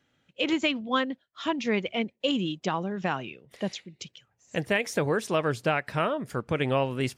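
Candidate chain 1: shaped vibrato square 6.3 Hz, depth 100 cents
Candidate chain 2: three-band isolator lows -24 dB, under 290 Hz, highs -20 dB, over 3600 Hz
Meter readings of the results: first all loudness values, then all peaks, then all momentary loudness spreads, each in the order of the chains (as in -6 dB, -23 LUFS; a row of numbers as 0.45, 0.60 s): -28.5, -31.0 LUFS; -13.5, -12.5 dBFS; 9, 11 LU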